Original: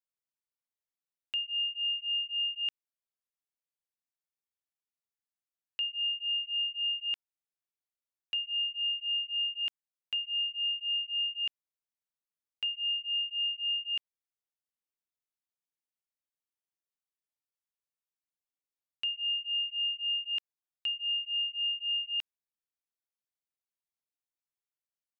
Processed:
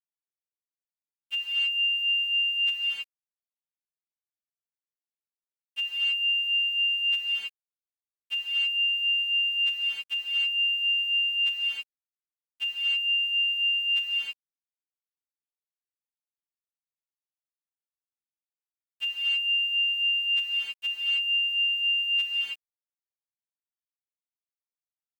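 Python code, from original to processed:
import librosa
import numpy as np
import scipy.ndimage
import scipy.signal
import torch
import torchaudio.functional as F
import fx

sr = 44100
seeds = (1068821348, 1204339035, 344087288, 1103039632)

y = fx.freq_snap(x, sr, grid_st=2)
y = fx.rev_gated(y, sr, seeds[0], gate_ms=340, shape='rising', drr_db=-6.0)
y = fx.quant_dither(y, sr, seeds[1], bits=10, dither='none')
y = y * 10.0 ** (1.5 / 20.0)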